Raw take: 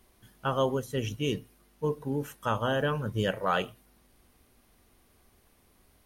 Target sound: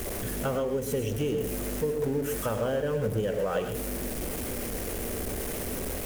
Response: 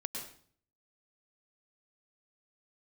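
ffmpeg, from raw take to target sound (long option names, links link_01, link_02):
-filter_complex "[0:a]aeval=exprs='val(0)+0.5*0.0335*sgn(val(0))':channel_layout=same,equalizer=frequency=500:width_type=o:width=1:gain=8,equalizer=frequency=1000:width_type=o:width=1:gain=-7,equalizer=frequency=4000:width_type=o:width=1:gain=-7,acompressor=threshold=-27dB:ratio=12,aeval=exprs='val(0)+0.00447*(sin(2*PI*50*n/s)+sin(2*PI*2*50*n/s)/2+sin(2*PI*3*50*n/s)/3+sin(2*PI*4*50*n/s)/4+sin(2*PI*5*50*n/s)/5)':channel_layout=same,asplit=2[link_01][link_02];[1:a]atrim=start_sample=2205,atrim=end_sample=6615[link_03];[link_02][link_03]afir=irnorm=-1:irlink=0,volume=1.5dB[link_04];[link_01][link_04]amix=inputs=2:normalize=0,volume=-4.5dB"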